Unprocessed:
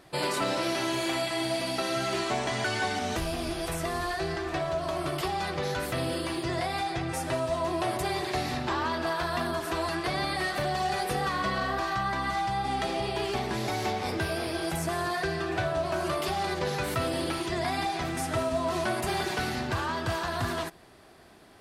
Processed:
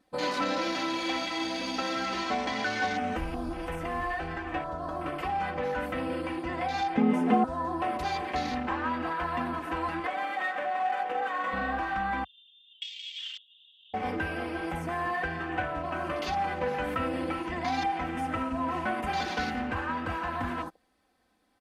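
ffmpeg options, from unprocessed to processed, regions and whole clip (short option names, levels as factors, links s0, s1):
-filter_complex "[0:a]asettb=1/sr,asplit=3[s0][s1][s2];[s0]atrim=end=6.974[s3];[s1]atrim=start=6.97:end=7.44,asetpts=PTS-STARTPTS,afade=t=in:d=0.004:c=qsin,afade=t=out:st=0.466:d=0.004:c=qsin,lowpass=12000,equalizer=f=170:t=o:w=2.5:g=12.5,afreqshift=90[s4];[s2]atrim=start=7.436[s5];[s3][s4]acrossfade=d=0.004:c1=hsin:c2=qsin[s6];[s6][s5]acrossfade=d=0.004:c1=qsin:c2=hsin,asettb=1/sr,asplit=3[s7][s8][s9];[s7]atrim=end=10.064[s10];[s8]atrim=start=10.06:end=11.53,asetpts=PTS-STARTPTS,afade=t=in:d=0.004:c=qsin,afade=t=out:st=1.466:d=0.004:c=qsin,highpass=480,adynamicsmooth=sensitivity=7:basefreq=940[s11];[s9]atrim=start=11.526[s12];[s10][s11]acrossfade=d=0.004:c1=hsin:c2=qsin[s13];[s13][s12]acrossfade=d=0.004:c1=qsin:c2=hsin,asettb=1/sr,asplit=3[s14][s15][s16];[s14]atrim=end=12.244[s17];[s15]atrim=start=12.24:end=13.94,asetpts=PTS-STARTPTS,afade=t=in:d=0.004:c=qsin,afade=t=out:st=1.696:d=0.004:c=qsin,asuperpass=centerf=3200:order=12:qfactor=3.5,acontrast=40[s18];[s16]atrim=start=13.936[s19];[s17][s18]acrossfade=d=0.004:c1=hsin:c2=qsin[s20];[s20][s19]acrossfade=d=0.004:c1=qsin:c2=hsin,afwtdn=0.0126,aecho=1:1:3.9:0.82,volume=0.75"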